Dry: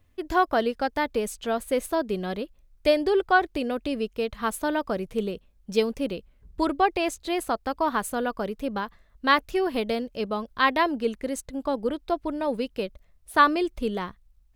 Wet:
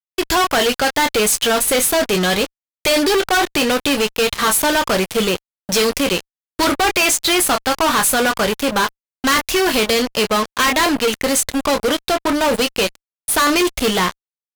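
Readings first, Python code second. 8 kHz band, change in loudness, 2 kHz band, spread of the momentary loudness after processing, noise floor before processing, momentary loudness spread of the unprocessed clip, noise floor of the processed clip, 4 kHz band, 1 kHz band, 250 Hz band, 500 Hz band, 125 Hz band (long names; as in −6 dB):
+23.0 dB, +10.0 dB, +10.5 dB, 6 LU, −61 dBFS, 10 LU, below −85 dBFS, +17.0 dB, +6.5 dB, +8.0 dB, +8.0 dB, +11.0 dB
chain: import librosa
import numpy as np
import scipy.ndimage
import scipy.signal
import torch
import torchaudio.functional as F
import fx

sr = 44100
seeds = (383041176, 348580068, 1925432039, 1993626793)

y = fx.tilt_shelf(x, sr, db=-8.0, hz=1100.0)
y = fx.room_early_taps(y, sr, ms=(11, 28), db=(-12.0, -12.0))
y = fx.fuzz(y, sr, gain_db=40.0, gate_db=-41.0)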